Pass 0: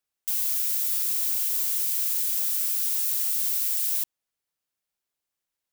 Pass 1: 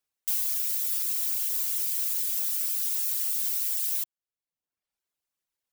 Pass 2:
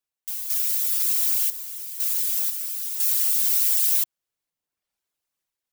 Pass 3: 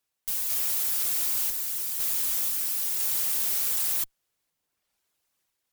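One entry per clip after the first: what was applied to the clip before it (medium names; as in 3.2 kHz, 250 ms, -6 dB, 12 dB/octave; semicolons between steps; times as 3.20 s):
reverb removal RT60 0.89 s
random-step tremolo 2 Hz, depth 80%; trim +8 dB
valve stage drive 32 dB, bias 0.25; trim +7.5 dB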